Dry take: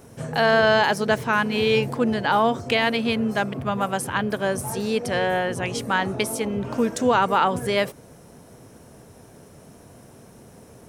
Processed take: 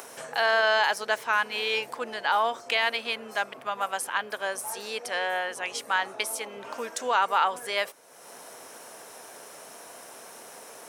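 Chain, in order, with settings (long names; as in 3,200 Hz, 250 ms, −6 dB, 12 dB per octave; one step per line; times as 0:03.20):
high-pass filter 760 Hz 12 dB per octave
upward compression, threshold −32 dBFS
level −2 dB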